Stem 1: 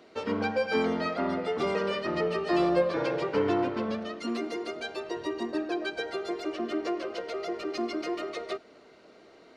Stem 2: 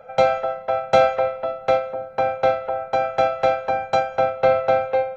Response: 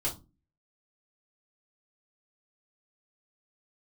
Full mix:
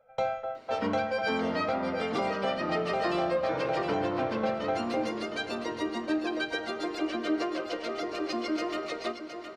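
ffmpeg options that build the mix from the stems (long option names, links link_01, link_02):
-filter_complex "[0:a]equalizer=frequency=390:width=3.9:gain=-7,adelay=550,volume=1dB,asplit=3[link_01][link_02][link_03];[link_02]volume=-15dB[link_04];[link_03]volume=-7.5dB[link_05];[1:a]agate=range=-9dB:threshold=-27dB:ratio=16:detection=peak,volume=-13dB,asplit=2[link_06][link_07];[link_07]volume=-12.5dB[link_08];[2:a]atrim=start_sample=2205[link_09];[link_04][link_08]amix=inputs=2:normalize=0[link_10];[link_10][link_09]afir=irnorm=-1:irlink=0[link_11];[link_05]aecho=0:1:715|1430|2145|2860|3575:1|0.32|0.102|0.0328|0.0105[link_12];[link_01][link_06][link_11][link_12]amix=inputs=4:normalize=0,alimiter=limit=-19dB:level=0:latency=1:release=362"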